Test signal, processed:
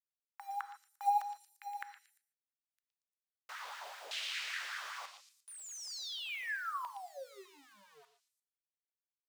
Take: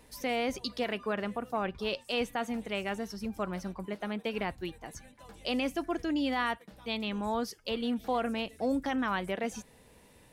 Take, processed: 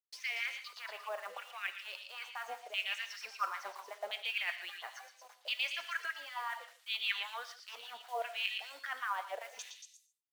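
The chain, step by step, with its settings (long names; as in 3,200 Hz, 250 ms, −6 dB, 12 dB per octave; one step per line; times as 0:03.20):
high-pass filter 62 Hz 6 dB per octave
noise gate −51 dBFS, range −35 dB
meter weighting curve ITU-R 468
reversed playback
downward compressor 16 to 1, threshold −39 dBFS
reversed playback
auto-filter band-pass saw down 0.73 Hz 550–3,300 Hz
tape wow and flutter 23 cents
log-companded quantiser 6 bits
auto-filter high-pass sine 5.1 Hz 460–1,700 Hz
echo through a band-pass that steps 116 ms, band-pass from 3,800 Hz, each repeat 0.7 octaves, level −2.5 dB
reverb whose tail is shaped and stops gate 170 ms flat, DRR 10.5 dB
level +7.5 dB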